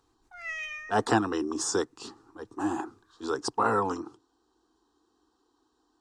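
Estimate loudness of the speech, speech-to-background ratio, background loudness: −29.5 LKFS, 8.0 dB, −37.5 LKFS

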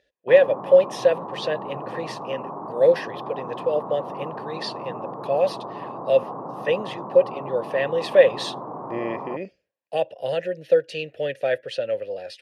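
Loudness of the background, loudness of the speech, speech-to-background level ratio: −34.5 LKFS, −23.0 LKFS, 11.5 dB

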